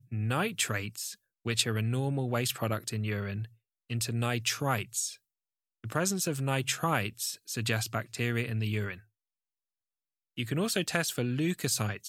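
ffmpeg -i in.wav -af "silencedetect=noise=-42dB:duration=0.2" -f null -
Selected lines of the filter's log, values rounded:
silence_start: 1.14
silence_end: 1.46 | silence_duration: 0.32
silence_start: 3.46
silence_end: 3.90 | silence_duration: 0.44
silence_start: 5.15
silence_end: 5.84 | silence_duration: 0.69
silence_start: 8.95
silence_end: 10.38 | silence_duration: 1.42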